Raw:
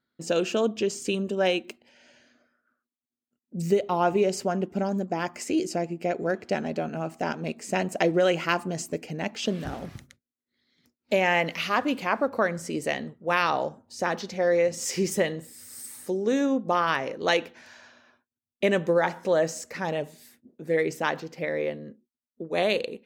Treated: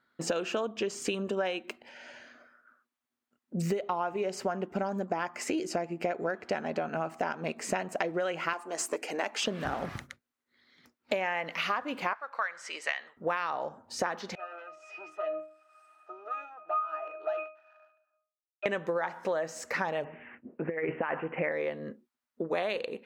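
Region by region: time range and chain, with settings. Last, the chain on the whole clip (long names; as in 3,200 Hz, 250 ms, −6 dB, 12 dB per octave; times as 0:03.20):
0:08.53–0:09.44: parametric band 9,000 Hz +9 dB 1.1 octaves + tube saturation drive 17 dB, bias 0.25 + high-pass filter 290 Hz 24 dB per octave
0:12.13–0:13.17: high-pass filter 1,400 Hz + high-frequency loss of the air 76 metres
0:14.35–0:18.66: leveller curve on the samples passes 3 + high-pass filter 580 Hz 24 dB per octave + resonances in every octave D#, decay 0.39 s
0:20.04–0:21.52: Butterworth low-pass 2,900 Hz 96 dB per octave + compressor whose output falls as the input rises −29 dBFS, ratio −0.5
whole clip: parametric band 1,200 Hz +12.5 dB 2.5 octaves; downward compressor 10 to 1, threshold −28 dBFS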